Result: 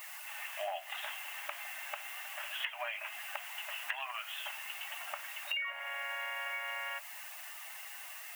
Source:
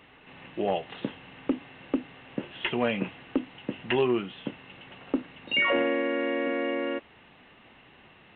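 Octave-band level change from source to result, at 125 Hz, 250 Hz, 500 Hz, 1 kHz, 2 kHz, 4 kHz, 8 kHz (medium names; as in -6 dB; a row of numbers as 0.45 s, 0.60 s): under -40 dB, under -40 dB, -19.0 dB, -6.5 dB, -5.0 dB, -4.5 dB, no reading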